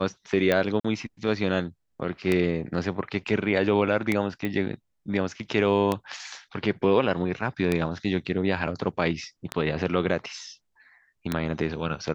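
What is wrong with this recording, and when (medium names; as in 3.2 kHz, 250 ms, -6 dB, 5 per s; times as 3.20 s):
tick 33 1/3 rpm -10 dBFS
0.80–0.84 s: dropout 45 ms
4.45 s: pop -17 dBFS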